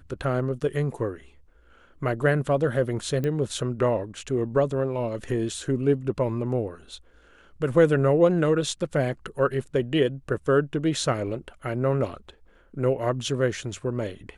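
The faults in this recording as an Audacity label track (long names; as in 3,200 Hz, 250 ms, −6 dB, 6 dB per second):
3.240000	3.240000	click −17 dBFS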